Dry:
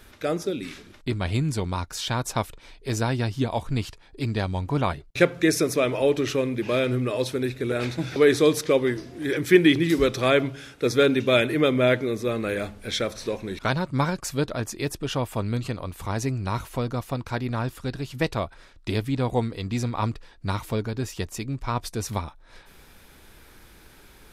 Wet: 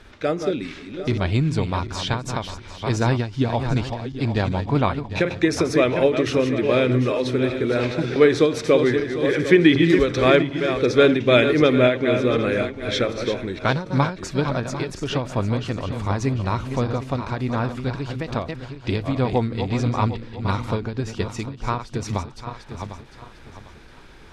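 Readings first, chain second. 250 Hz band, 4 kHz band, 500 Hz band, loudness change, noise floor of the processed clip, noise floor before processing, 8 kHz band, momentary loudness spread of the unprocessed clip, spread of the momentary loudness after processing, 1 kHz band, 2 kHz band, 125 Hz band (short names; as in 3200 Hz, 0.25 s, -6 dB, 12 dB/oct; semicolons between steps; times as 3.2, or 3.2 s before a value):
+4.0 dB, +2.0 dB, +4.0 dB, +4.0 dB, -44 dBFS, -52 dBFS, -3.0 dB, 11 LU, 12 LU, +4.0 dB, +3.0 dB, +4.0 dB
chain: regenerating reverse delay 0.375 s, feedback 54%, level -8 dB; air absorption 97 m; ending taper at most 140 dB/s; gain +4.5 dB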